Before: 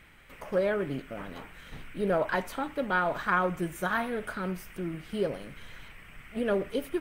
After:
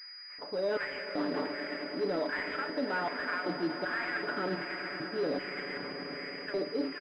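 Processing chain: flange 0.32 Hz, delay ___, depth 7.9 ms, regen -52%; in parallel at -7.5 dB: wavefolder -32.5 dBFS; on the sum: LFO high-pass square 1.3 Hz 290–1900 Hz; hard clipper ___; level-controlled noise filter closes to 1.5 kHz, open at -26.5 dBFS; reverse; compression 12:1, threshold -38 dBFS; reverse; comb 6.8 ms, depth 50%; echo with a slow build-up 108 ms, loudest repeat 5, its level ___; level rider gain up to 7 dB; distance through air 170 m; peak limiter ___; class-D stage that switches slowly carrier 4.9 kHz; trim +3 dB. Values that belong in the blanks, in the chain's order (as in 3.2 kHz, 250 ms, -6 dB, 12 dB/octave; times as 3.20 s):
6.7 ms, -20.5 dBFS, -16 dB, -26.5 dBFS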